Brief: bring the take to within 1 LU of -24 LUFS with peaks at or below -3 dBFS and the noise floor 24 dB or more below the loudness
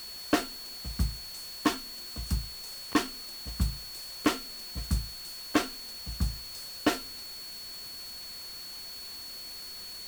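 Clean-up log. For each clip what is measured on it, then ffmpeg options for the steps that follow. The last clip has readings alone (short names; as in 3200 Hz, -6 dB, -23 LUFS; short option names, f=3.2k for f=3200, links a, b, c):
steady tone 4400 Hz; tone level -41 dBFS; noise floor -43 dBFS; noise floor target -58 dBFS; loudness -34.0 LUFS; peak -12.0 dBFS; loudness target -24.0 LUFS
-> -af "bandreject=f=4.4k:w=30"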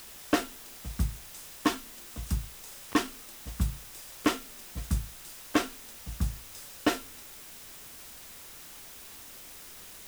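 steady tone none; noise floor -48 dBFS; noise floor target -59 dBFS
-> -af "afftdn=nr=11:nf=-48"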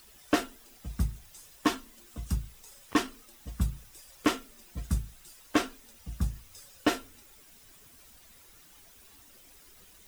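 noise floor -56 dBFS; noise floor target -57 dBFS
-> -af "afftdn=nr=6:nf=-56"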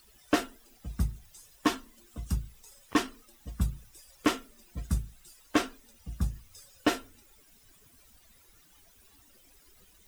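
noise floor -61 dBFS; loudness -33.0 LUFS; peak -12.5 dBFS; loudness target -24.0 LUFS
-> -af "volume=9dB"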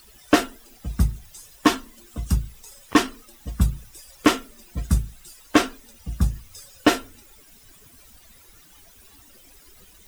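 loudness -24.0 LUFS; peak -3.5 dBFS; noise floor -52 dBFS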